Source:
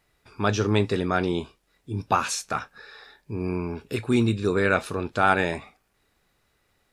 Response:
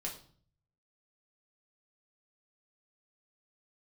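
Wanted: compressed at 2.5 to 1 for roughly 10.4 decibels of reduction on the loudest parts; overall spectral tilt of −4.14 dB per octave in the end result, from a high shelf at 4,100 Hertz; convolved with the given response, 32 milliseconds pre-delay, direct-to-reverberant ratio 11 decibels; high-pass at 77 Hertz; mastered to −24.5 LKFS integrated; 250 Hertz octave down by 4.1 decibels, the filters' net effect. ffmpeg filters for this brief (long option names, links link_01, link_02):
-filter_complex "[0:a]highpass=77,equalizer=frequency=250:width_type=o:gain=-5.5,highshelf=frequency=4100:gain=7,acompressor=threshold=-31dB:ratio=2.5,asplit=2[link_01][link_02];[1:a]atrim=start_sample=2205,adelay=32[link_03];[link_02][link_03]afir=irnorm=-1:irlink=0,volume=-11dB[link_04];[link_01][link_04]amix=inputs=2:normalize=0,volume=9dB"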